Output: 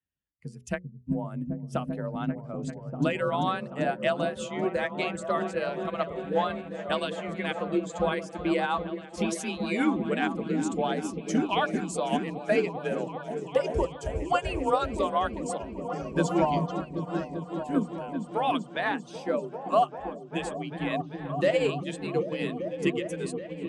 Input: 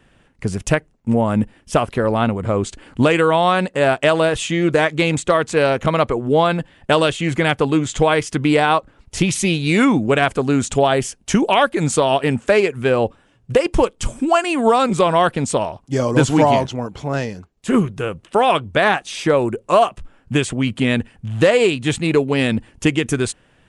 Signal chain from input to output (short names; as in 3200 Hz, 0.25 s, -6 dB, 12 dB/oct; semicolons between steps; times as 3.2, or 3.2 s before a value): per-bin expansion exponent 1.5; repeats that get brighter 0.392 s, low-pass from 200 Hz, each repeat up 1 oct, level 0 dB; frequency shift +32 Hz; notches 60/120/180/240/300/360/420/480/540/600 Hz; upward expander 1.5:1, over -28 dBFS; gain -7 dB